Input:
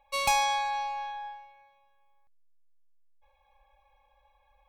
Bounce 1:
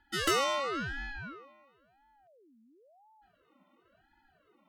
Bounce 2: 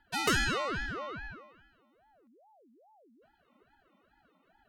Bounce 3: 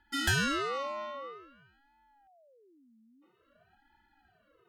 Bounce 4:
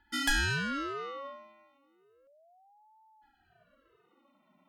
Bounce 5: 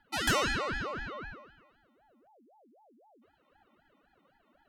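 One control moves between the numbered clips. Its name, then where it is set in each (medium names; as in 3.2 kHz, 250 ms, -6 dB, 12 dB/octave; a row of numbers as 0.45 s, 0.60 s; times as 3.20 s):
ring modulator with a swept carrier, at: 0.96 Hz, 2.4 Hz, 0.5 Hz, 0.33 Hz, 3.9 Hz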